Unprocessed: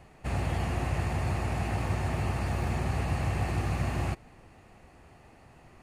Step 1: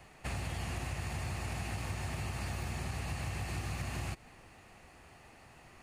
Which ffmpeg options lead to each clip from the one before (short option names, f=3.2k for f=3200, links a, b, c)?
-filter_complex "[0:a]acrossover=split=250|3000[a][b][c];[b]acompressor=threshold=-38dB:ratio=6[d];[a][d][c]amix=inputs=3:normalize=0,tiltshelf=f=1.1k:g=-4.5,acompressor=threshold=-34dB:ratio=6"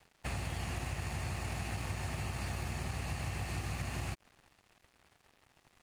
-af "aeval=exprs='sgn(val(0))*max(abs(val(0))-0.002,0)':c=same,volume=1dB"